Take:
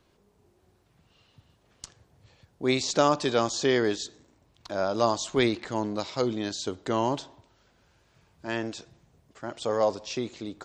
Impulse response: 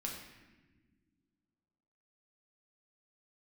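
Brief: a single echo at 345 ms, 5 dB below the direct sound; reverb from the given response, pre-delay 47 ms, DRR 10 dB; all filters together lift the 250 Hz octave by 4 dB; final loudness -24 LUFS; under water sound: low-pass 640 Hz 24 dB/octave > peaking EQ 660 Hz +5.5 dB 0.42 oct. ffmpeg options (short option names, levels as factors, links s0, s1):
-filter_complex "[0:a]equalizer=f=250:t=o:g=5,aecho=1:1:345:0.562,asplit=2[s0][s1];[1:a]atrim=start_sample=2205,adelay=47[s2];[s1][s2]afir=irnorm=-1:irlink=0,volume=0.316[s3];[s0][s3]amix=inputs=2:normalize=0,lowpass=f=640:w=0.5412,lowpass=f=640:w=1.3066,equalizer=f=660:t=o:w=0.42:g=5.5,volume=1.19"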